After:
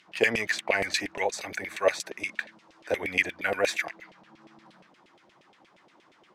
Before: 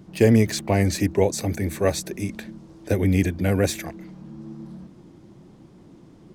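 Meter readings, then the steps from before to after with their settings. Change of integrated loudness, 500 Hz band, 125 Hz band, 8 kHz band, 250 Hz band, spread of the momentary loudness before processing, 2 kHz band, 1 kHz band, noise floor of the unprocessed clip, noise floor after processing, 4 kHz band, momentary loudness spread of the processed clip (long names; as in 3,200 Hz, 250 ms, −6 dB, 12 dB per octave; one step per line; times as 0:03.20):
−6.0 dB, −6.0 dB, −26.0 dB, −6.5 dB, −17.5 dB, 21 LU, +6.0 dB, −1.0 dB, −50 dBFS, −62 dBFS, 0.0 dB, 10 LU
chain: tilt shelving filter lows −8.5 dB, about 1,100 Hz
auto-filter band-pass saw down 8.5 Hz 530–2,900 Hz
level +7.5 dB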